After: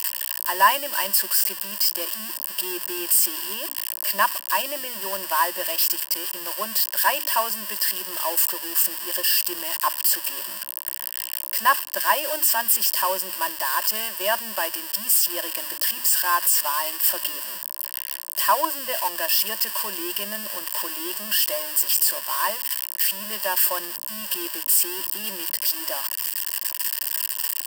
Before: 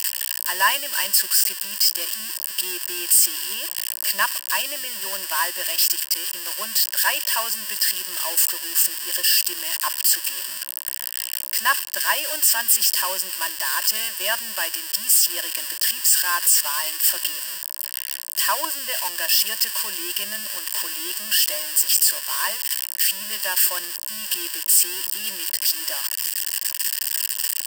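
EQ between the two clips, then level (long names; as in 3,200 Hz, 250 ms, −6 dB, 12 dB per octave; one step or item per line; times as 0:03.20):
flat-topped bell 3,400 Hz −8 dB 2.9 octaves
high-shelf EQ 6,000 Hz −7 dB
mains-hum notches 60/120/180/240/300 Hz
+6.0 dB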